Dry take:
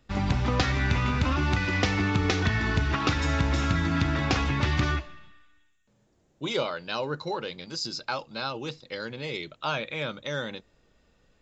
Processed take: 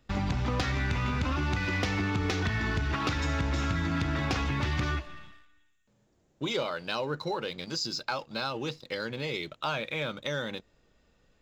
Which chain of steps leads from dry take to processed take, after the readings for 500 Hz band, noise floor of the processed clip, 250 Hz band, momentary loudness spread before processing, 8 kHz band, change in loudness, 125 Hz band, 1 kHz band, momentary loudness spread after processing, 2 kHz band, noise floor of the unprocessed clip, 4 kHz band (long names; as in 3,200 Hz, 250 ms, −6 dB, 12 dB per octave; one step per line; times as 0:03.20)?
−2.0 dB, −69 dBFS, −3.5 dB, 10 LU, can't be measured, −3.5 dB, −4.0 dB, −3.0 dB, 6 LU, −3.0 dB, −67 dBFS, −2.5 dB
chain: leveller curve on the samples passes 1
downward compressor 2 to 1, threshold −32 dBFS, peak gain reduction 8 dB